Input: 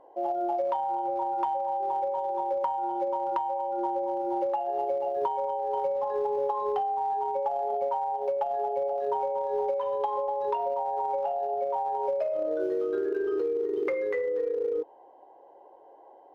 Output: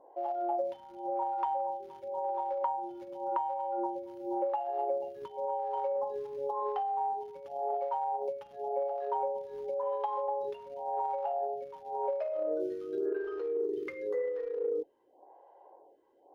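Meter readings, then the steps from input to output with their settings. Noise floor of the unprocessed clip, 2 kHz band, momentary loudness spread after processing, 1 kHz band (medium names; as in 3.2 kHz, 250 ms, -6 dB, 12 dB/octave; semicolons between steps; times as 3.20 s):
-54 dBFS, no reading, 6 LU, -5.5 dB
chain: lamp-driven phase shifter 0.92 Hz; trim -2.5 dB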